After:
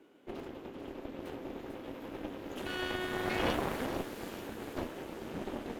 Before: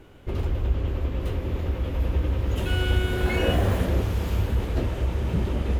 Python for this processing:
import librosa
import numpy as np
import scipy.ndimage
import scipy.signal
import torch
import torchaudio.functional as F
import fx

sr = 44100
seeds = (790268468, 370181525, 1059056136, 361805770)

y = fx.dynamic_eq(x, sr, hz=1600.0, q=4.3, threshold_db=-51.0, ratio=4.0, max_db=5)
y = fx.ladder_highpass(y, sr, hz=220.0, resonance_pct=40)
y = fx.cheby_harmonics(y, sr, harmonics=(4,), levels_db=(-6,), full_scale_db=-18.5)
y = fx.echo_wet_highpass(y, sr, ms=445, feedback_pct=56, hz=5500.0, wet_db=-4.5)
y = F.gain(torch.from_numpy(y), -3.5).numpy()